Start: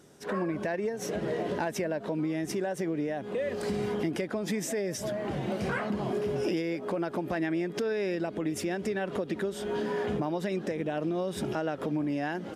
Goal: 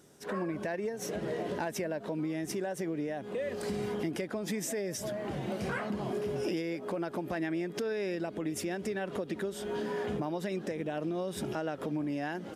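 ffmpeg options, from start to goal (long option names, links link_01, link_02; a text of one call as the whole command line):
ffmpeg -i in.wav -af "highshelf=frequency=7600:gain=6,volume=-3.5dB" out.wav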